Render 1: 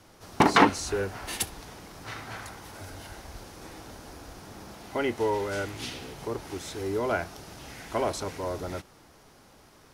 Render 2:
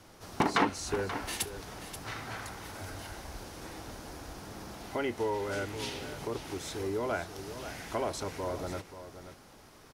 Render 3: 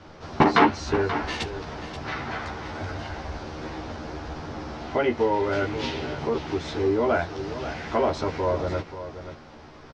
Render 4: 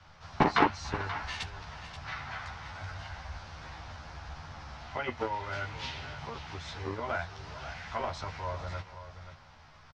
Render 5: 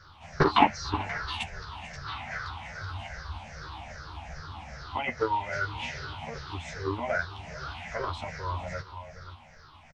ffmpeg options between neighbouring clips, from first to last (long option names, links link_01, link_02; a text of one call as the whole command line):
ffmpeg -i in.wav -filter_complex "[0:a]acompressor=threshold=-37dB:ratio=1.5,asplit=2[link_01][link_02];[link_02]aecho=0:1:532:0.266[link_03];[link_01][link_03]amix=inputs=2:normalize=0" out.wav
ffmpeg -i in.wav -filter_complex "[0:a]lowpass=frequency=5500:width=0.5412,lowpass=frequency=5500:width=1.3066,highshelf=frequency=3300:gain=-8,asplit=2[link_01][link_02];[link_02]adelay=13,volume=-2dB[link_03];[link_01][link_03]amix=inputs=2:normalize=0,volume=8dB" out.wav
ffmpeg -i in.wav -filter_complex "[0:a]aecho=1:1:442:0.119,acrossover=split=170|680[link_01][link_02][link_03];[link_02]acrusher=bits=2:mix=0:aa=0.5[link_04];[link_01][link_04][link_03]amix=inputs=3:normalize=0,volume=-6dB" out.wav
ffmpeg -i in.wav -af "afftfilt=real='re*pow(10,17/40*sin(2*PI*(0.57*log(max(b,1)*sr/1024/100)/log(2)-(-2.5)*(pts-256)/sr)))':imag='im*pow(10,17/40*sin(2*PI*(0.57*log(max(b,1)*sr/1024/100)/log(2)-(-2.5)*(pts-256)/sr)))':win_size=1024:overlap=0.75" out.wav